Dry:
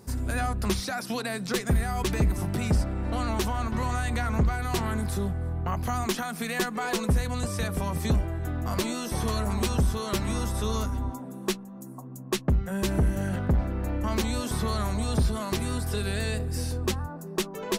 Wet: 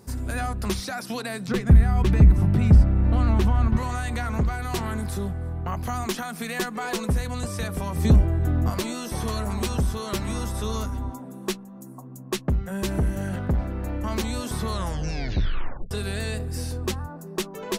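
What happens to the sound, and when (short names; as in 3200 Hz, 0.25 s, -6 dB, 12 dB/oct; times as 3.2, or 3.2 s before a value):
1.48–3.77 tone controls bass +11 dB, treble -10 dB
7.98–8.7 low shelf 500 Hz +9 dB
14.69 tape stop 1.22 s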